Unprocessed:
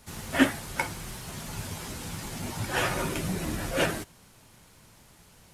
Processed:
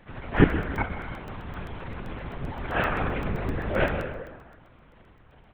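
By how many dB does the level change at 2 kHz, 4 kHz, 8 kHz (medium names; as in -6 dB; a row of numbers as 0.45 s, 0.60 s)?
+0.5 dB, -7.5 dB, under -25 dB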